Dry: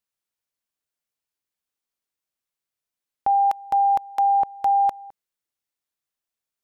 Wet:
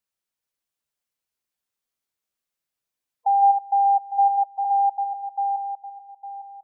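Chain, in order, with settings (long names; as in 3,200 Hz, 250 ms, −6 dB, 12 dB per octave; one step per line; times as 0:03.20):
feedback delay that plays each chunk backwards 428 ms, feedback 50%, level −4.5 dB
gate on every frequency bin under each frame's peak −15 dB strong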